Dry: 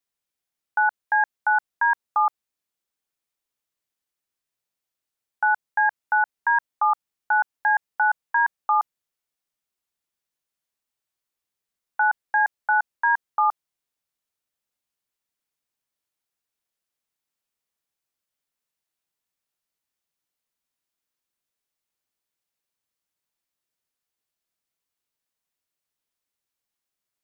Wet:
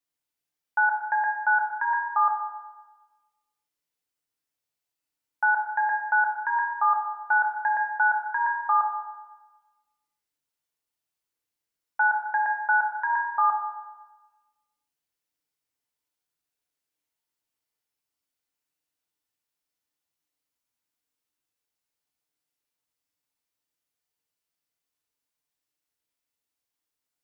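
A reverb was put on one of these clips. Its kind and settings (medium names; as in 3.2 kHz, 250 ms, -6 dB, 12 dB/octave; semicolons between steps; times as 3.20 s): FDN reverb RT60 1.2 s, low-frequency decay 1×, high-frequency decay 1×, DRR -1 dB; trim -4.5 dB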